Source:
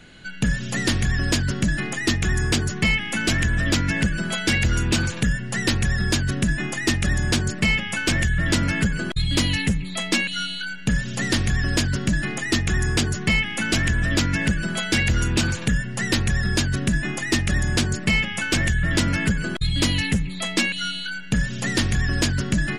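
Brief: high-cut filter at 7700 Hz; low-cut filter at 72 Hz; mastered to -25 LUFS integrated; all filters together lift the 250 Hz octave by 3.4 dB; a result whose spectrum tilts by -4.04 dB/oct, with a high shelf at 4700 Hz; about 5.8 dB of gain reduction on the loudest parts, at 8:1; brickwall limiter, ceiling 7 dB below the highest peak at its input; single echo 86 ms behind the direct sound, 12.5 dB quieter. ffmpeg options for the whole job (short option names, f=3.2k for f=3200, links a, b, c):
-af "highpass=72,lowpass=7.7k,equalizer=f=250:t=o:g=4.5,highshelf=f=4.7k:g=7.5,acompressor=threshold=-20dB:ratio=8,alimiter=limit=-16dB:level=0:latency=1,aecho=1:1:86:0.237,volume=0.5dB"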